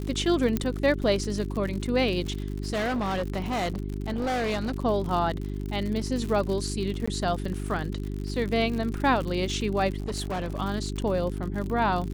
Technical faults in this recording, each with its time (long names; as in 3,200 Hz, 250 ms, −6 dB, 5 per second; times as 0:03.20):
surface crackle 87 per second −32 dBFS
mains hum 50 Hz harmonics 8 −32 dBFS
0:00.57: click −12 dBFS
0:02.29–0:04.74: clipping −24.5 dBFS
0:07.06–0:07.08: drop-out 15 ms
0:10.00–0:10.58: clipping −26.5 dBFS